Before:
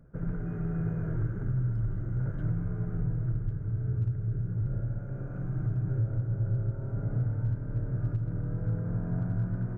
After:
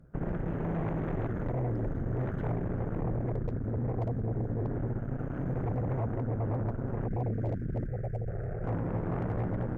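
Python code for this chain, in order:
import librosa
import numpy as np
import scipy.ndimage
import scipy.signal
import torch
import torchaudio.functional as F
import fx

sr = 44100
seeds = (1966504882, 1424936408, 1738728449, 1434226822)

y = fx.spec_box(x, sr, start_s=7.06, length_s=1.22, low_hz=240.0, high_hz=1500.0, gain_db=-27)
y = fx.cheby_harmonics(y, sr, harmonics=(5, 8), levels_db=(-15, -7), full_scale_db=-20.0)
y = fx.fixed_phaser(y, sr, hz=1000.0, stages=6, at=(7.86, 8.64))
y = y * librosa.db_to_amplitude(-5.5)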